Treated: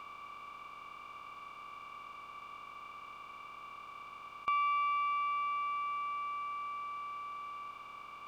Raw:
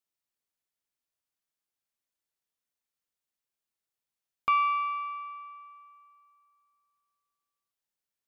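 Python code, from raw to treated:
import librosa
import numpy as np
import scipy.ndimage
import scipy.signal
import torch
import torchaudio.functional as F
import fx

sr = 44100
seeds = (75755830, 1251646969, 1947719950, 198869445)

y = fx.bin_compress(x, sr, power=0.2)
y = F.gain(torch.from_numpy(y), -8.5).numpy()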